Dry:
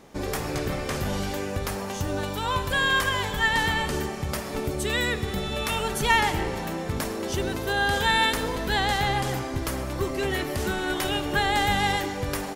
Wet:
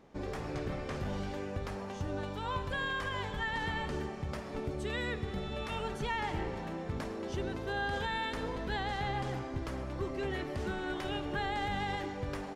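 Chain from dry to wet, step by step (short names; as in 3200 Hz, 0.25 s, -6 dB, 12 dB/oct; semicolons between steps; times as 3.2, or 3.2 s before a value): high shelf 5200 Hz +5 dB; limiter -15 dBFS, peak gain reduction 5.5 dB; tape spacing loss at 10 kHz 21 dB; gain -7.5 dB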